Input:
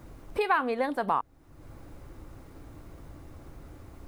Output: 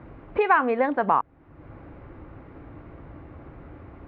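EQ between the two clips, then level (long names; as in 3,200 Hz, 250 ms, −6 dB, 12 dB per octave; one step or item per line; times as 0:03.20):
high-pass filter 76 Hz 6 dB per octave
low-pass filter 2,500 Hz 24 dB per octave
+6.0 dB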